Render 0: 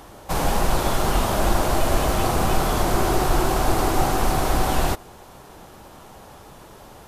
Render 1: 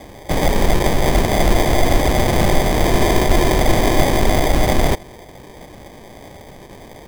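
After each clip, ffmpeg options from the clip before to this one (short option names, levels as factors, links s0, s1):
-af "acrusher=samples=32:mix=1:aa=0.000001,volume=1.88"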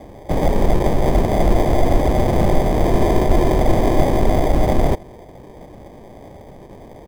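-af "firequalizer=gain_entry='entry(610,0);entry(1500,-8);entry(3700,-11)':delay=0.05:min_phase=1"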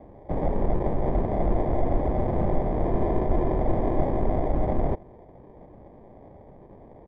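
-af "lowpass=1400,volume=0.376"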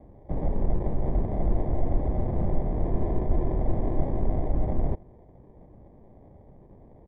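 -af "lowshelf=f=270:g=10,volume=0.355"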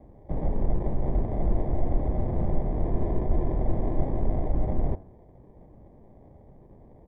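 -af "bandreject=f=93.89:t=h:w=4,bandreject=f=187.78:t=h:w=4,bandreject=f=281.67:t=h:w=4,bandreject=f=375.56:t=h:w=4,bandreject=f=469.45:t=h:w=4,bandreject=f=563.34:t=h:w=4,bandreject=f=657.23:t=h:w=4,bandreject=f=751.12:t=h:w=4,bandreject=f=845.01:t=h:w=4,bandreject=f=938.9:t=h:w=4,bandreject=f=1032.79:t=h:w=4,bandreject=f=1126.68:t=h:w=4,bandreject=f=1220.57:t=h:w=4,bandreject=f=1314.46:t=h:w=4,bandreject=f=1408.35:t=h:w=4,bandreject=f=1502.24:t=h:w=4,bandreject=f=1596.13:t=h:w=4,bandreject=f=1690.02:t=h:w=4"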